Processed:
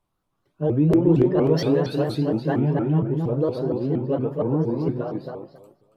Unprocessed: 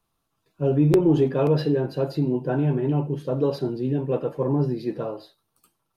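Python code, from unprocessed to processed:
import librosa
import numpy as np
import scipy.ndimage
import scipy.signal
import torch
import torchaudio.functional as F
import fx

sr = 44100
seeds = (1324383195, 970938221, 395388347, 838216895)

y = fx.high_shelf(x, sr, hz=2200.0, db=fx.steps((0.0, -8.5), (1.53, 6.0), (2.58, -7.5)))
y = fx.echo_filtered(y, sr, ms=276, feedback_pct=20, hz=3000.0, wet_db=-4.0)
y = fx.vibrato_shape(y, sr, shape='saw_up', rate_hz=4.3, depth_cents=250.0)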